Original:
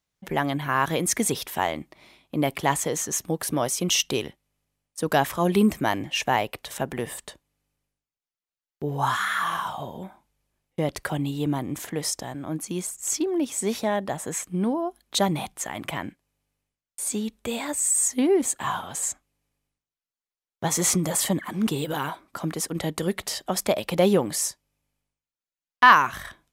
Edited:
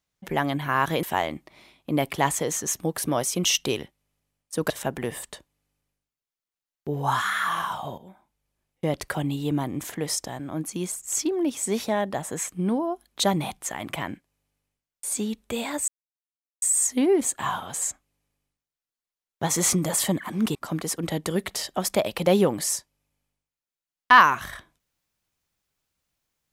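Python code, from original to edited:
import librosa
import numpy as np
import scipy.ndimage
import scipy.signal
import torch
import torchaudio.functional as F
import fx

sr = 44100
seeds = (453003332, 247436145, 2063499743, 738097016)

y = fx.edit(x, sr, fx.cut(start_s=1.03, length_s=0.45),
    fx.cut(start_s=5.15, length_s=1.5),
    fx.fade_in_from(start_s=9.93, length_s=0.88, floor_db=-13.0),
    fx.insert_silence(at_s=17.83, length_s=0.74),
    fx.cut(start_s=21.76, length_s=0.51), tone=tone)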